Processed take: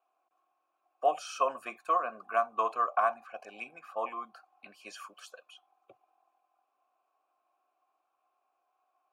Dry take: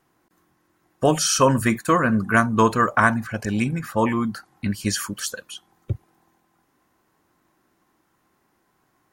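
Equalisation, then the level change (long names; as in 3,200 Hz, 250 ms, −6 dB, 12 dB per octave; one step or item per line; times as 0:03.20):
formant filter a
high-pass filter 420 Hz 12 dB per octave
high-shelf EQ 11,000 Hz +11 dB
0.0 dB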